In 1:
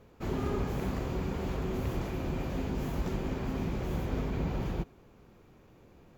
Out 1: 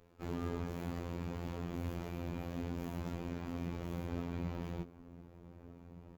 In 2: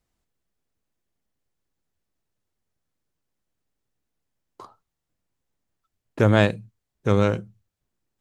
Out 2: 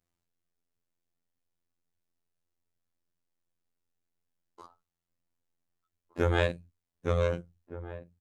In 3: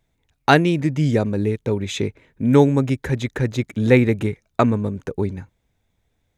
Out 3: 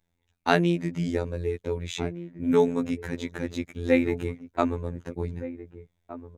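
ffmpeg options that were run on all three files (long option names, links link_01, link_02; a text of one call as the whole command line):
ffmpeg -i in.wav -filter_complex "[0:a]asplit=2[link_01][link_02];[link_02]adelay=1516,volume=-14dB,highshelf=frequency=4000:gain=-34.1[link_03];[link_01][link_03]amix=inputs=2:normalize=0,afftfilt=real='hypot(re,im)*cos(PI*b)':imag='0':win_size=2048:overlap=0.75,volume=-4dB" out.wav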